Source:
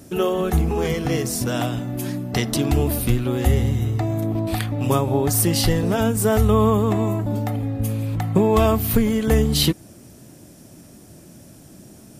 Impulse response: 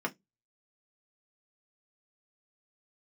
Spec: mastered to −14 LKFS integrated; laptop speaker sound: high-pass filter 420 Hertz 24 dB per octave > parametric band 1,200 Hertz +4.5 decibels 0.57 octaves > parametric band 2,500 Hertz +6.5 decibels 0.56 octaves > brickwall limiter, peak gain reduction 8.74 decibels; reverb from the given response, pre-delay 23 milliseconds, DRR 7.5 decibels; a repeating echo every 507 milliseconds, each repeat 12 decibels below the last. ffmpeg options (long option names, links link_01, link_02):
-filter_complex "[0:a]aecho=1:1:507|1014|1521:0.251|0.0628|0.0157,asplit=2[link_01][link_02];[1:a]atrim=start_sample=2205,adelay=23[link_03];[link_02][link_03]afir=irnorm=-1:irlink=0,volume=-13.5dB[link_04];[link_01][link_04]amix=inputs=2:normalize=0,highpass=frequency=420:width=0.5412,highpass=frequency=420:width=1.3066,equalizer=frequency=1200:width_type=o:width=0.57:gain=4.5,equalizer=frequency=2500:width_type=o:width=0.56:gain=6.5,volume=12dB,alimiter=limit=-2.5dB:level=0:latency=1"